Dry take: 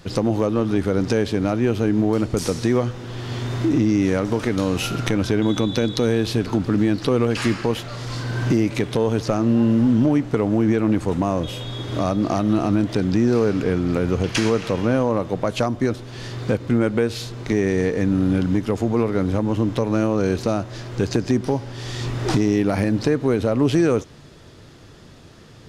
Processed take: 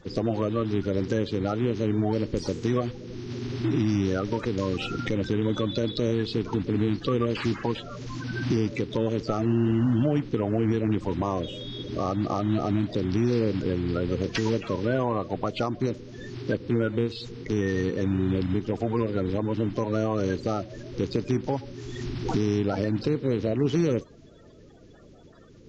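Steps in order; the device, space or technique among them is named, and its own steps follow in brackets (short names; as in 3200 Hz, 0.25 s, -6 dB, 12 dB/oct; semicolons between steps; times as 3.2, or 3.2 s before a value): clip after many re-uploads (LPF 5600 Hz 24 dB/oct; bin magnitudes rounded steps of 30 dB); gain -5.5 dB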